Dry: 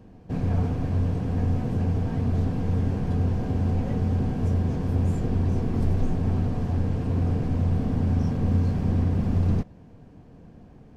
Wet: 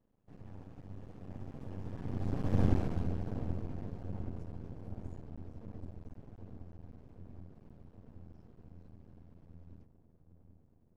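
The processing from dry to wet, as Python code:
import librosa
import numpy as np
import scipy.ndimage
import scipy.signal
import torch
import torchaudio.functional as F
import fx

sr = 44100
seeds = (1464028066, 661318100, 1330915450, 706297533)

y = fx.doppler_pass(x, sr, speed_mps=19, closest_m=3.1, pass_at_s=2.66)
y = fx.echo_wet_lowpass(y, sr, ms=777, feedback_pct=69, hz=890.0, wet_db=-11)
y = np.maximum(y, 0.0)
y = y * librosa.db_to_amplitude(1.0)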